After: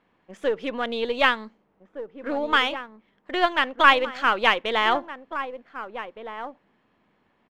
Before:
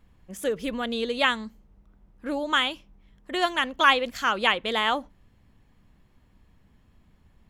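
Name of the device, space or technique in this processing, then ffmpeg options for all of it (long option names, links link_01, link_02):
crystal radio: -filter_complex "[0:a]highpass=330,lowpass=2800,asplit=2[link_01][link_02];[link_02]adelay=1516,volume=-10dB,highshelf=frequency=4000:gain=-34.1[link_03];[link_01][link_03]amix=inputs=2:normalize=0,aeval=exprs='if(lt(val(0),0),0.708*val(0),val(0))':channel_layout=same,volume=5dB"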